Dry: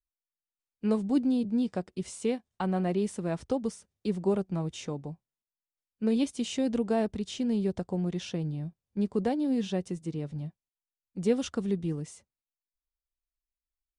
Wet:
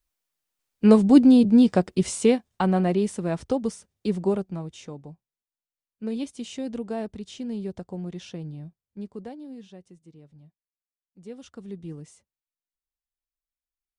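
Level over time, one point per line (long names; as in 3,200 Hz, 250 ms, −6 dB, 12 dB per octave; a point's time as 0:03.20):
0:02.04 +12 dB
0:03.11 +4.5 dB
0:04.22 +4.5 dB
0:04.70 −3.5 dB
0:08.61 −3.5 dB
0:09.78 −15.5 dB
0:11.24 −15.5 dB
0:11.93 −5 dB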